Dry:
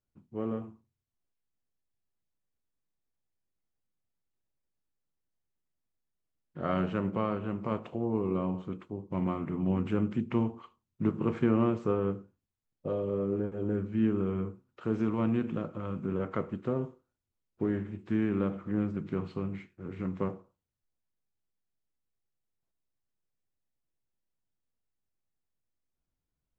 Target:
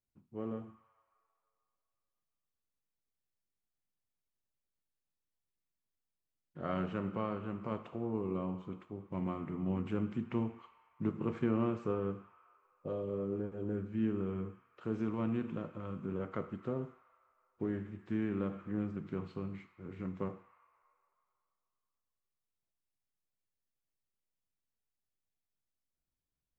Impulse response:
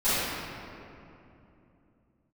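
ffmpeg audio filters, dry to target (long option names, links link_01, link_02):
-filter_complex "[0:a]asplit=2[link_01][link_02];[link_02]highpass=frequency=980:width=0.5412,highpass=frequency=980:width=1.3066[link_03];[1:a]atrim=start_sample=2205[link_04];[link_03][link_04]afir=irnorm=-1:irlink=0,volume=-24.5dB[link_05];[link_01][link_05]amix=inputs=2:normalize=0,volume=-6dB"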